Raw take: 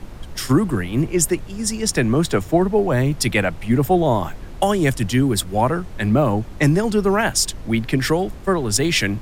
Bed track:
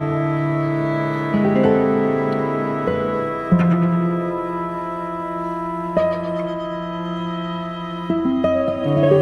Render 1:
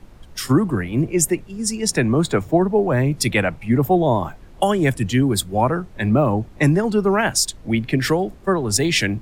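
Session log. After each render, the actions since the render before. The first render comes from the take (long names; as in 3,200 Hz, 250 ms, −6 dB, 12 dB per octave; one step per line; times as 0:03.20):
noise reduction from a noise print 9 dB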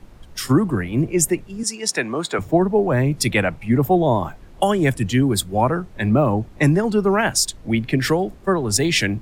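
0:01.63–0:02.39: meter weighting curve A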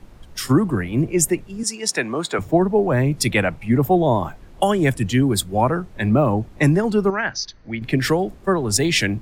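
0:07.10–0:07.82: Chebyshev low-pass with heavy ripple 6,300 Hz, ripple 9 dB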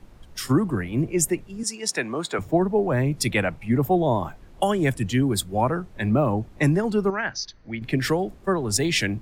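level −4 dB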